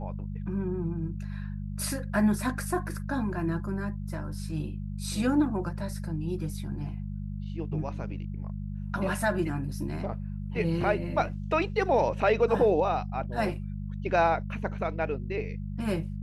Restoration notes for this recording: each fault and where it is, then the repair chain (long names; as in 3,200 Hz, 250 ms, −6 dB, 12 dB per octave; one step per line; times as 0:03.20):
mains hum 50 Hz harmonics 4 −35 dBFS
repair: hum removal 50 Hz, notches 4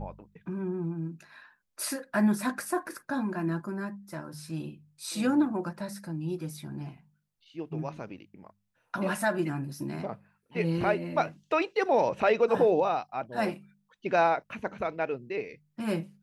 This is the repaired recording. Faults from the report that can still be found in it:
none of them is left